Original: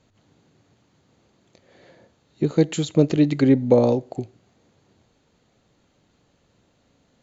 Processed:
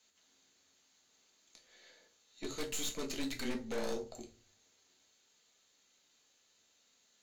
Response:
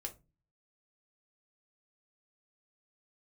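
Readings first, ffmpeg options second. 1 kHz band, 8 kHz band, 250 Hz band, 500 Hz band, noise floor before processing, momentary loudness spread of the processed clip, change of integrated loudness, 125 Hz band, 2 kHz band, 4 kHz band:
-15.5 dB, no reading, -23.0 dB, -21.0 dB, -65 dBFS, 11 LU, -20.0 dB, -31.0 dB, -8.0 dB, -5.5 dB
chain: -filter_complex "[0:a]aderivative,afreqshift=-21,aeval=exprs='(tanh(100*val(0)+0.65)-tanh(0.65))/100':c=same,aeval=exprs='0.0106*(abs(mod(val(0)/0.0106+3,4)-2)-1)':c=same[s0];[1:a]atrim=start_sample=2205,asetrate=32634,aresample=44100[s1];[s0][s1]afir=irnorm=-1:irlink=0,volume=2.99"

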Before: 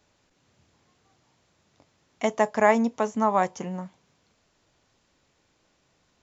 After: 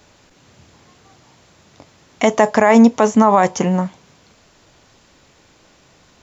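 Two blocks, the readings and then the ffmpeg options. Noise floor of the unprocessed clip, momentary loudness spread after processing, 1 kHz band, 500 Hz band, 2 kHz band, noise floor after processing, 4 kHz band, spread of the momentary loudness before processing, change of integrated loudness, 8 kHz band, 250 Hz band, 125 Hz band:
-69 dBFS, 9 LU, +9.0 dB, +9.5 dB, +8.0 dB, -53 dBFS, +12.5 dB, 14 LU, +10.5 dB, no reading, +14.0 dB, +14.5 dB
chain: -af "alimiter=level_in=7.08:limit=0.891:release=50:level=0:latency=1,volume=0.891"

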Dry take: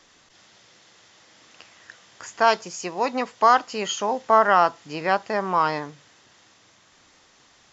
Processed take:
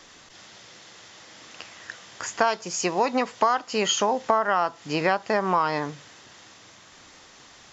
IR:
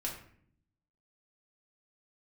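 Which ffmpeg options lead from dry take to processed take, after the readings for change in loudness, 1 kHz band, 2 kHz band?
-2.5 dB, -3.5 dB, -2.0 dB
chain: -af "acompressor=threshold=0.0562:ratio=6,volume=2.11"

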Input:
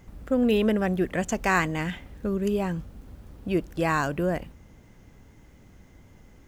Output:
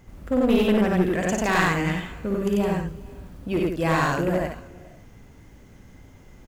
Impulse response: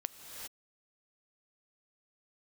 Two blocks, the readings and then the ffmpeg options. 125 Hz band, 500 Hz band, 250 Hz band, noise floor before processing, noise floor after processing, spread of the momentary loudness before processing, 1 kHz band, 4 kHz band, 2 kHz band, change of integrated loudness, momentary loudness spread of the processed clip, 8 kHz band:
+4.0 dB, +3.0 dB, +3.5 dB, -53 dBFS, -49 dBFS, 11 LU, +3.0 dB, +4.5 dB, +3.0 dB, +3.0 dB, 14 LU, +3.5 dB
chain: -filter_complex "[0:a]aecho=1:1:55.39|93.29|163.3:0.562|1|0.447,asplit=2[s0][s1];[1:a]atrim=start_sample=2205,asetrate=34839,aresample=44100,adelay=8[s2];[s1][s2]afir=irnorm=-1:irlink=0,volume=0.112[s3];[s0][s3]amix=inputs=2:normalize=0,aeval=exprs='clip(val(0),-1,0.112)':c=same"

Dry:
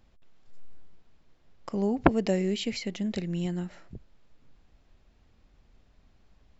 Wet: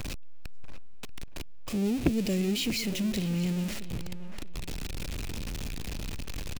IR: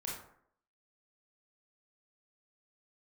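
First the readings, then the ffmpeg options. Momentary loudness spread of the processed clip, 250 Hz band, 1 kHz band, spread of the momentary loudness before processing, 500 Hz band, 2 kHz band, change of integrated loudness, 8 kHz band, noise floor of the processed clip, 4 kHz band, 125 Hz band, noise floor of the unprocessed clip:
17 LU, +0.5 dB, -10.5 dB, 12 LU, -4.5 dB, 0.0 dB, -3.0 dB, no reading, -35 dBFS, +5.0 dB, +2.5 dB, -63 dBFS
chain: -filter_complex "[0:a]aeval=exprs='val(0)+0.5*0.0562*sgn(val(0))':c=same,equalizer=f=2500:t=o:w=0.22:g=6,asplit=2[s0][s1];[s1]adelay=636,lowpass=f=3400:p=1,volume=0.2,asplit=2[s2][s3];[s3]adelay=636,lowpass=f=3400:p=1,volume=0.27,asplit=2[s4][s5];[s5]adelay=636,lowpass=f=3400:p=1,volume=0.27[s6];[s0][s2][s4][s6]amix=inputs=4:normalize=0,acrossover=split=450|2400[s7][s8][s9];[s8]acompressor=threshold=0.00447:ratio=6[s10];[s7][s10][s9]amix=inputs=3:normalize=0,volume=0.708"

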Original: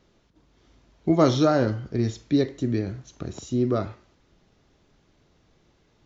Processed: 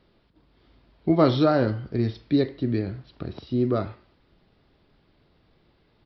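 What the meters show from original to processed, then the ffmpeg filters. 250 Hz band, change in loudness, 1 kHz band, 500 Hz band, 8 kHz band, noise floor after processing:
0.0 dB, 0.0 dB, 0.0 dB, 0.0 dB, no reading, -64 dBFS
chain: -af "aresample=11025,aresample=44100"

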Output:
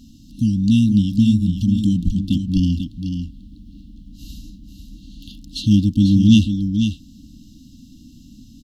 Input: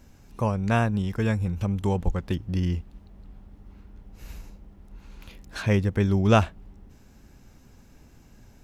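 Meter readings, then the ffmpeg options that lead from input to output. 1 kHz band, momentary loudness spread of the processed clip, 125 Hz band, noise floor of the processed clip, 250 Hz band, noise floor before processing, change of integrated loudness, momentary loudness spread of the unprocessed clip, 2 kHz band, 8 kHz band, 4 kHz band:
under -40 dB, 13 LU, +6.5 dB, -45 dBFS, +12.5 dB, -54 dBFS, +8.0 dB, 12 LU, -7.0 dB, no reading, +11.0 dB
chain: -af "equalizer=f=250:t=o:w=1:g=10,equalizer=f=500:t=o:w=1:g=7,equalizer=f=2000:t=o:w=1:g=-5,equalizer=f=4000:t=o:w=1:g=11,afftfilt=real='re*(1-between(b*sr/4096,320,2700))':imag='im*(1-between(b*sr/4096,320,2700))':win_size=4096:overlap=0.75,adynamicequalizer=threshold=0.00282:dfrequency=360:dqfactor=7.9:tfrequency=360:tqfactor=7.9:attack=5:release=100:ratio=0.375:range=2:mode=cutabove:tftype=bell,aecho=1:1:492:0.422,volume=1.5"

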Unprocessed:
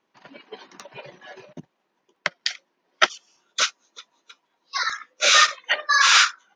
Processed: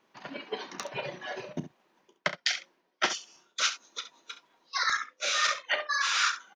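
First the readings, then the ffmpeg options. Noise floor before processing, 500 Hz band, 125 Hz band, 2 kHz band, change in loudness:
-75 dBFS, -4.0 dB, +4.5 dB, -8.5 dB, -11.0 dB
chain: -af "areverse,acompressor=threshold=0.0355:ratio=20,areverse,aecho=1:1:33|68:0.2|0.237,volume=1.68"

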